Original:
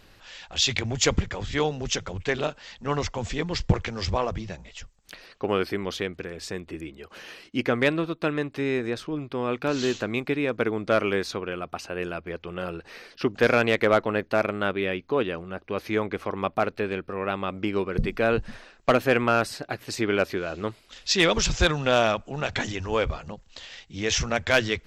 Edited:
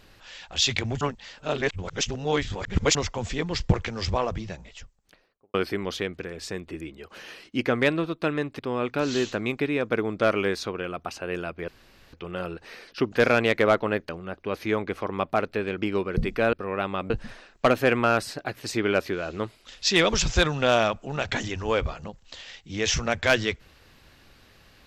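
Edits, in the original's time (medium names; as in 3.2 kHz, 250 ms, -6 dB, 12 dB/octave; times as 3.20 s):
1.01–2.95 s: reverse
4.54–5.54 s: studio fade out
8.59–9.27 s: delete
12.36 s: insert room tone 0.45 s
14.32–15.33 s: delete
17.02–17.59 s: move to 18.34 s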